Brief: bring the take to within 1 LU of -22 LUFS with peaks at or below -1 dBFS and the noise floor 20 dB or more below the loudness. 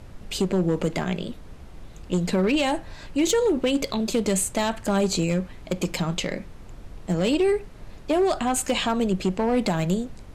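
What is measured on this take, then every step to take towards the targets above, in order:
clipped 1.4%; flat tops at -15.5 dBFS; noise floor -43 dBFS; noise floor target -45 dBFS; loudness -24.5 LUFS; peak -15.5 dBFS; loudness target -22.0 LUFS
-> clip repair -15.5 dBFS; noise print and reduce 6 dB; gain +2.5 dB

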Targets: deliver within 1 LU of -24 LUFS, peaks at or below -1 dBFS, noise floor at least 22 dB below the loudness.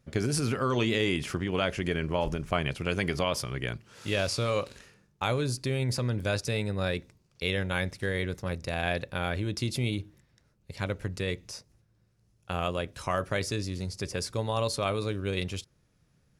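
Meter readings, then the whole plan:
loudness -31.0 LUFS; peak -13.0 dBFS; loudness target -24.0 LUFS
-> gain +7 dB

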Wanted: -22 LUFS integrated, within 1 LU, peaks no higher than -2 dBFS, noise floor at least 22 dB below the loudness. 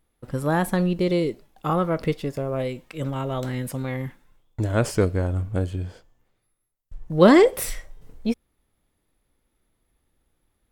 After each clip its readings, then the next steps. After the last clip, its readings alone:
loudness -23.5 LUFS; peak -2.0 dBFS; loudness target -22.0 LUFS
-> gain +1.5 dB; limiter -2 dBFS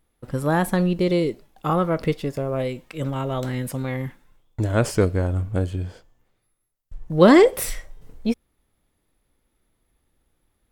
loudness -22.5 LUFS; peak -2.0 dBFS; noise floor -72 dBFS

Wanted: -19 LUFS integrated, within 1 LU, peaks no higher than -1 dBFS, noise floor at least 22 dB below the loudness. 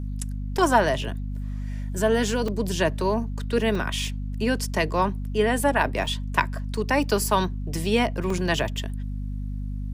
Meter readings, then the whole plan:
dropouts 5; longest dropout 3.3 ms; hum 50 Hz; harmonics up to 250 Hz; hum level -27 dBFS; loudness -25.5 LUFS; peak -5.0 dBFS; loudness target -19.0 LUFS
-> interpolate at 0.58/2.48/3.75/6.06/8.3, 3.3 ms; notches 50/100/150/200/250 Hz; gain +6.5 dB; limiter -1 dBFS

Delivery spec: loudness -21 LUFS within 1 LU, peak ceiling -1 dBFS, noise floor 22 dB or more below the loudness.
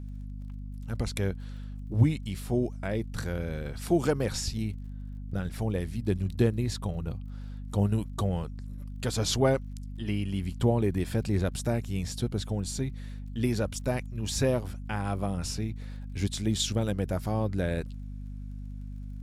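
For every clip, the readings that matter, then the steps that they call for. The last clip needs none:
ticks 33/s; hum 50 Hz; harmonics up to 250 Hz; hum level -36 dBFS; loudness -30.5 LUFS; peak -9.0 dBFS; loudness target -21.0 LUFS
-> de-click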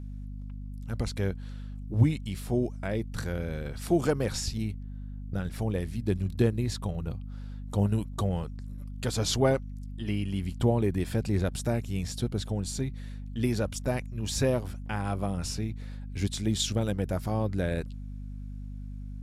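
ticks 0.10/s; hum 50 Hz; harmonics up to 250 Hz; hum level -36 dBFS
-> notches 50/100/150/200/250 Hz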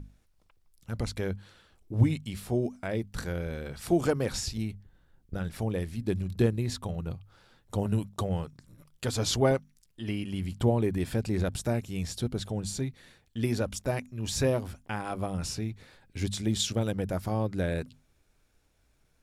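hum none; loudness -31.0 LUFS; peak -9.5 dBFS; loudness target -21.0 LUFS
-> gain +10 dB; limiter -1 dBFS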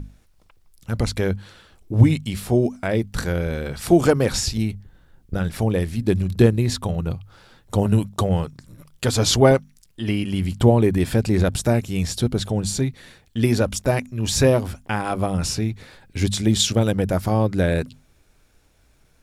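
loudness -21.5 LUFS; peak -1.0 dBFS; noise floor -58 dBFS

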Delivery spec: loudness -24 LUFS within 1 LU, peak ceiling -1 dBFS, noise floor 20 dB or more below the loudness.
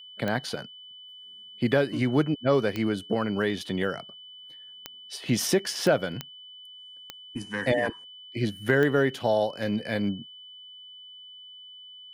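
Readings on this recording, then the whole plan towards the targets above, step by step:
clicks 7; steady tone 3000 Hz; tone level -44 dBFS; loudness -27.0 LUFS; peak -8.0 dBFS; loudness target -24.0 LUFS
-> de-click; notch 3000 Hz, Q 30; gain +3 dB

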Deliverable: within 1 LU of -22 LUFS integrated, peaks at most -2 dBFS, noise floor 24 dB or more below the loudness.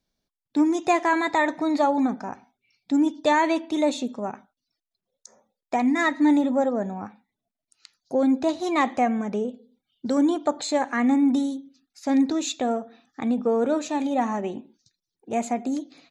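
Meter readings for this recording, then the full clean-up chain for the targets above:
loudness -24.0 LUFS; peak -9.5 dBFS; loudness target -22.0 LUFS
-> gain +2 dB

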